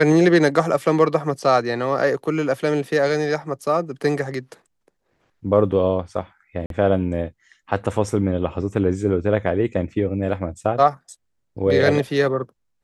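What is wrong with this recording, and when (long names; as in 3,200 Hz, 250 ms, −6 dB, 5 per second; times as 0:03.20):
0:06.66–0:06.70: drop-out 42 ms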